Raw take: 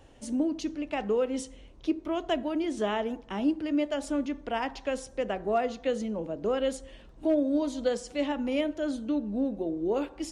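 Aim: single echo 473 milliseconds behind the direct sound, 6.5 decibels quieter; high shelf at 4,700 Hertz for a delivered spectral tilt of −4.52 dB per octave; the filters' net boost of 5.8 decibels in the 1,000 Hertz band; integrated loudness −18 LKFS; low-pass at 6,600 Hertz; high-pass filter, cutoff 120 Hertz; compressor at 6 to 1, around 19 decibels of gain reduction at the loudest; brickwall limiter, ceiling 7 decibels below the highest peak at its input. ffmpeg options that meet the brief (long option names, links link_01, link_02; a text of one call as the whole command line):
ffmpeg -i in.wav -af "highpass=120,lowpass=6600,equalizer=frequency=1000:width_type=o:gain=8.5,highshelf=frequency=4700:gain=-7,acompressor=threshold=-41dB:ratio=6,alimiter=level_in=12dB:limit=-24dB:level=0:latency=1,volume=-12dB,aecho=1:1:473:0.473,volume=26.5dB" out.wav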